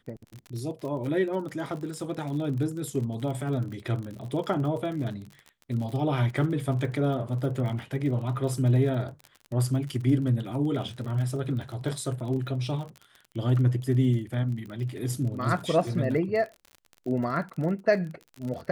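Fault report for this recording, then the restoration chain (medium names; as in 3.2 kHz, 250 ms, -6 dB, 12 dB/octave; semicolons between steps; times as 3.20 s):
crackle 43 per s -35 dBFS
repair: de-click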